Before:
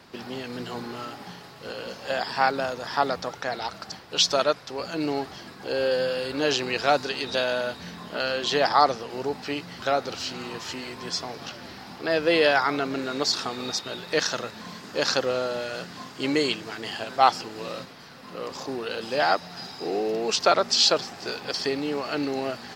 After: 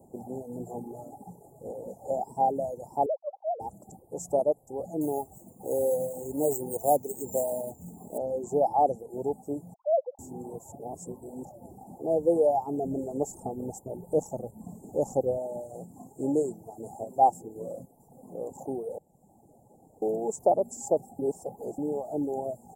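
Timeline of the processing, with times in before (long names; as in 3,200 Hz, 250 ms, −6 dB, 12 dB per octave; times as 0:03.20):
0:03.06–0:03.60: three sine waves on the formant tracks
0:05.01–0:08.18: bad sample-rate conversion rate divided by 4×, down none, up hold
0:09.74–0:10.19: three sine waves on the formant tracks
0:10.72–0:11.45: reverse
0:12.84–0:15.38: low-shelf EQ 110 Hz +11.5 dB
0:18.98–0:20.02: fill with room tone
0:21.19–0:21.78: reverse
whole clip: reverb reduction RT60 0.87 s; Chebyshev band-stop filter 830–7,300 Hz, order 5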